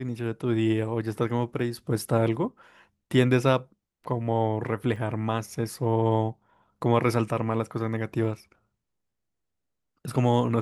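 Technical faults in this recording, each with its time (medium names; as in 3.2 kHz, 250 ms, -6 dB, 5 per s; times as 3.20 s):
4.96 s: dropout 4 ms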